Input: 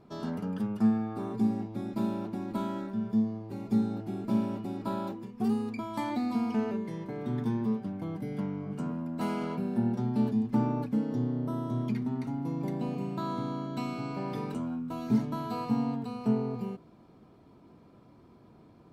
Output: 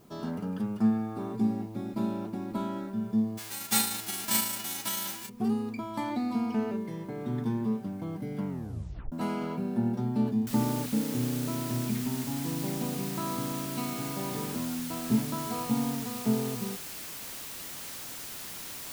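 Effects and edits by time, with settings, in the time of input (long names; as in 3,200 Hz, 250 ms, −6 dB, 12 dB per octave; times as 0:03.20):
0:03.37–0:05.28: spectral envelope flattened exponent 0.1
0:08.48: tape stop 0.64 s
0:10.47: noise floor change −67 dB −41 dB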